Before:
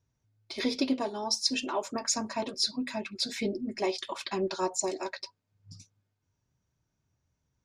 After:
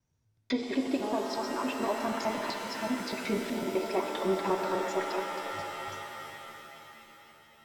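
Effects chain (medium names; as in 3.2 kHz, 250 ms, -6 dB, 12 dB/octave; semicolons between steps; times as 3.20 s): slices played last to first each 125 ms, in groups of 2; low-pass that closes with the level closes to 2 kHz, closed at -29 dBFS; pitch-shifted reverb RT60 3.7 s, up +7 st, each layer -2 dB, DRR 4 dB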